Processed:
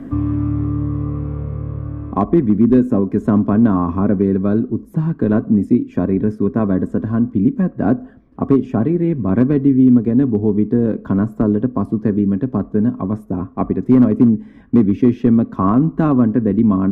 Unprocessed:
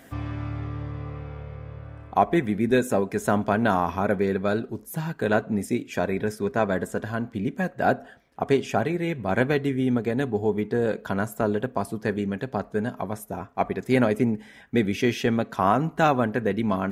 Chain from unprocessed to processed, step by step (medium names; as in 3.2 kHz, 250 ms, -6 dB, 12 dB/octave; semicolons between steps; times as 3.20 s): tilt EQ -4.5 dB/octave; band-stop 750 Hz, Q 22; hard clipper -6 dBFS, distortion -25 dB; small resonant body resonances 270/1100 Hz, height 13 dB, ringing for 25 ms; three bands compressed up and down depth 40%; trim -6 dB